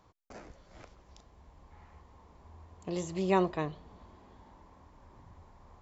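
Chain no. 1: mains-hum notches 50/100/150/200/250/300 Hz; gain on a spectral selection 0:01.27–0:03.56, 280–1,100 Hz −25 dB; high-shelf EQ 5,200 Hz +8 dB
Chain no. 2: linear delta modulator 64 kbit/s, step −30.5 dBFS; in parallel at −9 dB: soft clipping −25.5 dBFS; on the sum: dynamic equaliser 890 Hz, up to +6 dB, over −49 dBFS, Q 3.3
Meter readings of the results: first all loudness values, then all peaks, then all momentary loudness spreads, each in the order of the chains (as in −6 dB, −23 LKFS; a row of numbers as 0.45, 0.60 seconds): −38.0, −32.0 LKFS; −19.5, −11.5 dBFS; 24, 8 LU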